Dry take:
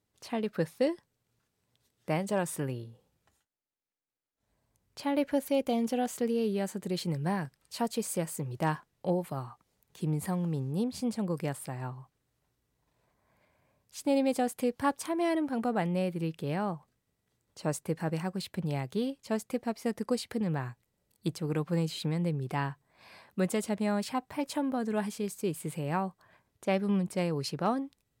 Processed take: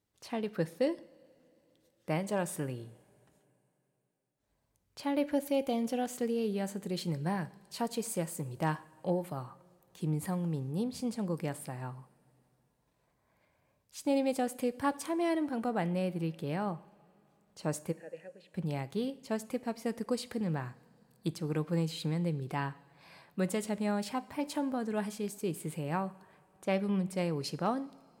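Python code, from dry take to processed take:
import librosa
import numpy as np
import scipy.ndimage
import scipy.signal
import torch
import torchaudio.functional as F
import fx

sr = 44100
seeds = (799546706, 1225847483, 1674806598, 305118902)

y = fx.vowel_filter(x, sr, vowel='e', at=(17.91, 18.54), fade=0.02)
y = fx.rev_double_slope(y, sr, seeds[0], early_s=0.54, late_s=3.4, knee_db=-17, drr_db=14.5)
y = y * 10.0 ** (-2.5 / 20.0)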